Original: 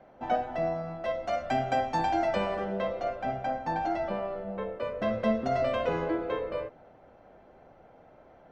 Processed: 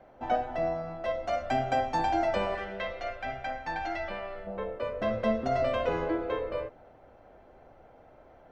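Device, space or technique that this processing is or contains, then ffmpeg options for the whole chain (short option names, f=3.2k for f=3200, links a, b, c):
low shelf boost with a cut just above: -filter_complex "[0:a]asettb=1/sr,asplit=3[a][b][c];[a]atrim=end=2.554[d];[b]atrim=start=2.55:end=4.47,asetpts=PTS-STARTPTS,afade=t=in:d=0.004:c=qsin,afade=t=out:st=1.916:d=0.004:c=qsin,equalizer=f=125:t=o:w=1:g=-6,equalizer=f=250:t=o:w=1:g=-6,equalizer=f=500:t=o:w=1:g=-5,equalizer=f=1k:t=o:w=1:g=-4,equalizer=f=2k:t=o:w=1:g=7,equalizer=f=4k:t=o:w=1:g=3[e];[c]atrim=start=4.466[f];[d][e]acrossfade=d=0.004:c1=hsin:c2=qsin[g];[g][f]acrossfade=d=0.004:c1=qsin:c2=hsin,lowshelf=f=78:g=6.5,equalizer=f=180:t=o:w=0.62:g=-5.5"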